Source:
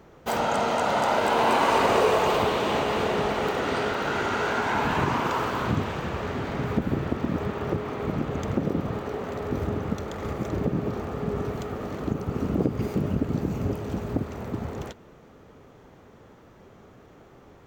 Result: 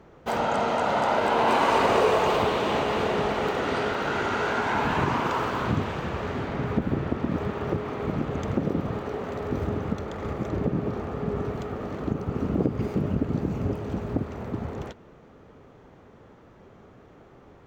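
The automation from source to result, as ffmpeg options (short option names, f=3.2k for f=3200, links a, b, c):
-af "asetnsamples=n=441:p=0,asendcmd='1.48 lowpass f 6300;6.45 lowpass f 3600;7.31 lowpass f 6000;9.92 lowpass f 3500',lowpass=f=3.6k:p=1"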